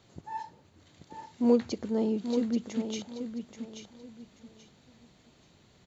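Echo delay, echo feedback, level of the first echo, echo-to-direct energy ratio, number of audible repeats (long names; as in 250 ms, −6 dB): 832 ms, 27%, −8.0 dB, −7.5 dB, 3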